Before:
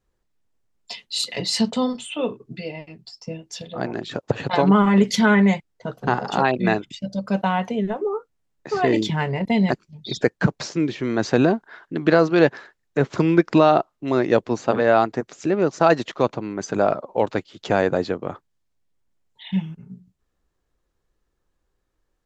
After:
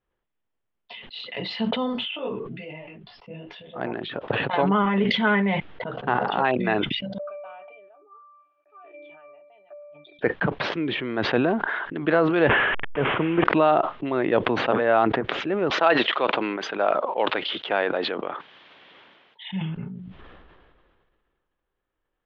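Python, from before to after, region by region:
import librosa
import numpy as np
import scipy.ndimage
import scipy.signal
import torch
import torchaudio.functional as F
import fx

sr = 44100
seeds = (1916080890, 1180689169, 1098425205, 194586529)

y = fx.chain(x, sr, fx.block_float(bits=7),
    fx.lowpass(hz=3700.0, slope=12),
    fx.detune_double(cents=36), at=(2.11, 3.76))
y = fx.chain(y, sr, fx.highpass(hz=530.0, slope=24),
    fx.octave_resonator(note='D', decay_s=0.34), at=(7.18, 10.19))
y = fx.chain(y, sr, fx.delta_mod(bps=16000, step_db=-25.5),
    fx.resample_bad(factor=4, down='none', up='zero_stuff'), at=(12.49, 13.44))
y = fx.chain(y, sr, fx.bessel_highpass(hz=350.0, order=2),
    fx.high_shelf(hz=2600.0, db=9.5), at=(15.7, 19.49))
y = scipy.signal.sosfilt(scipy.signal.ellip(4, 1.0, 70, 3300.0, 'lowpass', fs=sr, output='sos'), y)
y = fx.low_shelf(y, sr, hz=260.0, db=-8.0)
y = fx.sustainer(y, sr, db_per_s=28.0)
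y = y * 10.0 ** (-2.0 / 20.0)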